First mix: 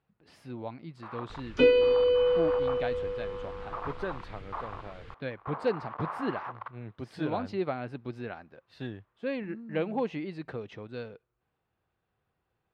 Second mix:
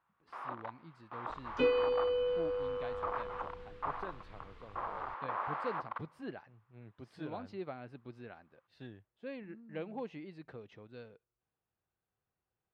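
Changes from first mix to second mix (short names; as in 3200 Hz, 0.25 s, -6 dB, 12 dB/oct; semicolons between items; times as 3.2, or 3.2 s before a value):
speech -11.0 dB; first sound: entry -0.70 s; second sound -8.5 dB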